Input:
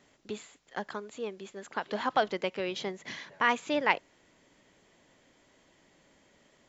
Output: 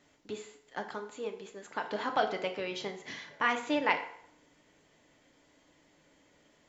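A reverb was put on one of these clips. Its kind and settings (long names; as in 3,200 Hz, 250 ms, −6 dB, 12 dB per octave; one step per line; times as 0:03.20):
feedback delay network reverb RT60 0.68 s, low-frequency decay 0.75×, high-frequency decay 0.75×, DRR 4 dB
level −3 dB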